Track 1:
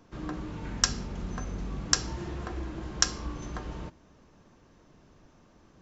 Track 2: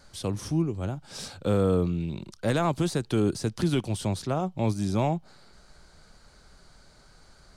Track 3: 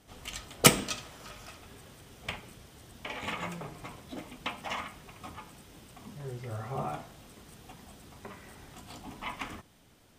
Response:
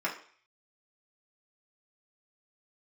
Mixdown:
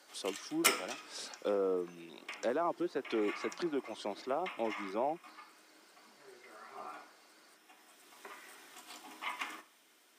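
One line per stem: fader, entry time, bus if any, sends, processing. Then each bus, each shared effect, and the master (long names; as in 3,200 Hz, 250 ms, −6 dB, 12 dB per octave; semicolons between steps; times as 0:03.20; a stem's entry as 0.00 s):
−13.0 dB, 0.50 s, no send, downward compressor, threshold −37 dBFS, peak gain reduction 18.5 dB
−4.5 dB, 0.00 s, no send, reverb reduction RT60 0.74 s; treble cut that deepens with the level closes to 1,300 Hz, closed at −21.5 dBFS
−2.0 dB, 0.00 s, send −11.5 dB, parametric band 540 Hz −7.5 dB 1.9 octaves; automatic ducking −16 dB, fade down 0.90 s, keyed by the second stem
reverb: on, RT60 0.50 s, pre-delay 3 ms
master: high-pass filter 310 Hz 24 dB per octave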